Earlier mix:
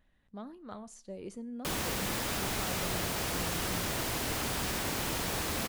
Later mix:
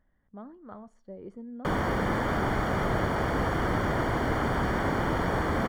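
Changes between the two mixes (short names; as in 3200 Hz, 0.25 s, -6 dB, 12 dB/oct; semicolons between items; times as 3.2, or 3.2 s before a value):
background +9.0 dB; master: add polynomial smoothing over 41 samples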